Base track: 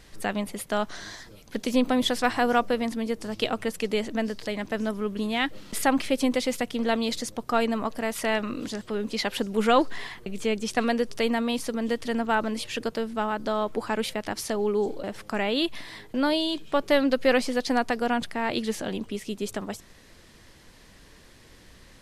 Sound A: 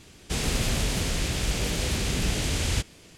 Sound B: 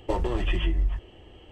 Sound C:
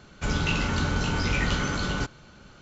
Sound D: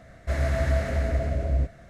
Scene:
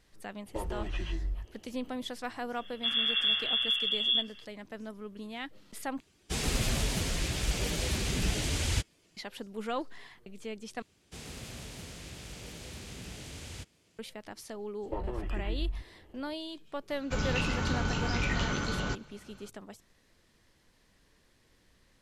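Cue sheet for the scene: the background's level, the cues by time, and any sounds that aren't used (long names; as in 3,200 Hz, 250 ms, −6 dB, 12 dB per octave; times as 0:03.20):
base track −14 dB
0:00.46: mix in B −9.5 dB
0:02.56: mix in D −6.5 dB + voice inversion scrambler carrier 3,400 Hz
0:06.00: overwrite with A −1.5 dB + spectral dynamics exaggerated over time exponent 1.5
0:10.82: overwrite with A −16.5 dB + high-pass filter 59 Hz
0:14.83: mix in B −9 dB + low-pass filter 2,000 Hz
0:16.89: mix in C −5 dB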